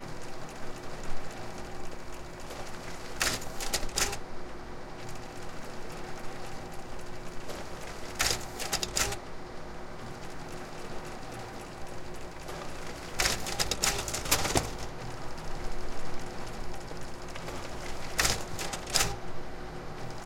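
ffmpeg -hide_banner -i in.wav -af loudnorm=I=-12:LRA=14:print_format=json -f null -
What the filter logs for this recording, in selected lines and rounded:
"input_i" : "-34.5",
"input_tp" : "-6.0",
"input_lra" : "10.9",
"input_thresh" : "-44.5",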